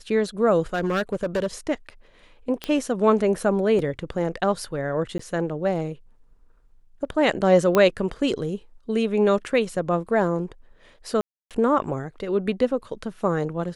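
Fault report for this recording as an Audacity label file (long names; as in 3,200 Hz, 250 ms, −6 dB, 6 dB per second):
0.740000	1.470000	clipping −19.5 dBFS
2.640000	2.640000	click −14 dBFS
3.790000	3.790000	drop-out 2.4 ms
5.180000	5.190000	drop-out 14 ms
7.750000	7.750000	click −7 dBFS
11.210000	11.510000	drop-out 297 ms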